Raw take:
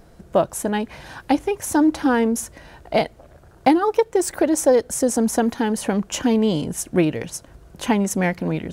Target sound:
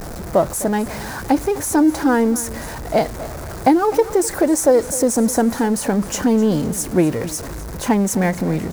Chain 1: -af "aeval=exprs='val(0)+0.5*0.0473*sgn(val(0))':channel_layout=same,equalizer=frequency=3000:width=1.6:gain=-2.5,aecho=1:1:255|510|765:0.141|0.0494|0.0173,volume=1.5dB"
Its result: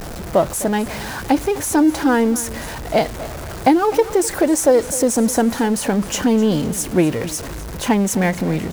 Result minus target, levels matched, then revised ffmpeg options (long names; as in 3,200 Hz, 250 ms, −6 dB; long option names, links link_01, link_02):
4,000 Hz band +3.5 dB
-af "aeval=exprs='val(0)+0.5*0.0473*sgn(val(0))':channel_layout=same,equalizer=frequency=3000:width=1.6:gain=-9.5,aecho=1:1:255|510|765:0.141|0.0494|0.0173,volume=1.5dB"